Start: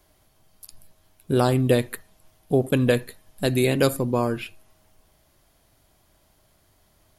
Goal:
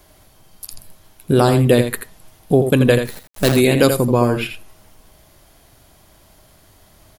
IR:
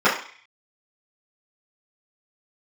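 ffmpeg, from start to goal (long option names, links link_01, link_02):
-filter_complex "[0:a]asplit=2[link_01][link_02];[link_02]acompressor=threshold=-28dB:ratio=6,volume=2.5dB[link_03];[link_01][link_03]amix=inputs=2:normalize=0,asplit=3[link_04][link_05][link_06];[link_04]afade=type=out:start_time=3.04:duration=0.02[link_07];[link_05]acrusher=bits=4:dc=4:mix=0:aa=0.000001,afade=type=in:start_time=3.04:duration=0.02,afade=type=out:start_time=3.51:duration=0.02[link_08];[link_06]afade=type=in:start_time=3.51:duration=0.02[link_09];[link_07][link_08][link_09]amix=inputs=3:normalize=0,aecho=1:1:83:0.398,volume=3.5dB"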